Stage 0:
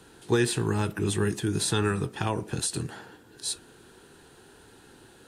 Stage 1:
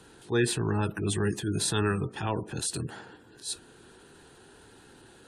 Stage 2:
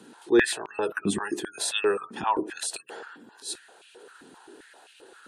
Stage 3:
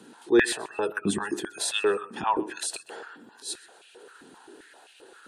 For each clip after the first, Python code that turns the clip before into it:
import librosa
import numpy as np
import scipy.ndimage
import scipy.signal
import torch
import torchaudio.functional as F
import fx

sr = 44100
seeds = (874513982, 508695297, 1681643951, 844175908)

y1 = fx.transient(x, sr, attack_db=-8, sustain_db=-1)
y1 = fx.spec_gate(y1, sr, threshold_db=-30, keep='strong')
y2 = fx.filter_held_highpass(y1, sr, hz=7.6, low_hz=230.0, high_hz=2600.0)
y3 = fx.echo_feedback(y2, sr, ms=127, feedback_pct=26, wet_db=-21)